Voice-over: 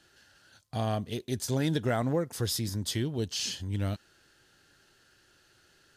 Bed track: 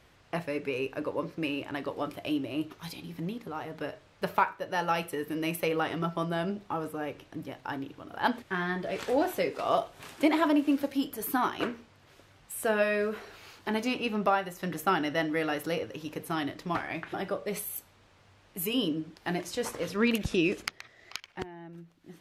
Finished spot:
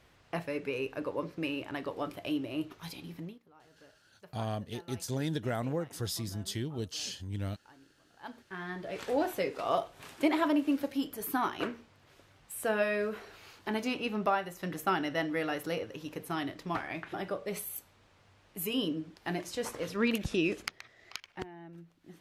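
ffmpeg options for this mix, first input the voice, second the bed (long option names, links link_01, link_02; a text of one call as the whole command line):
ffmpeg -i stem1.wav -i stem2.wav -filter_complex "[0:a]adelay=3600,volume=-5dB[link_01];[1:a]volume=17.5dB,afade=type=out:start_time=3.11:duration=0.29:silence=0.0944061,afade=type=in:start_time=8.18:duration=1.01:silence=0.1[link_02];[link_01][link_02]amix=inputs=2:normalize=0" out.wav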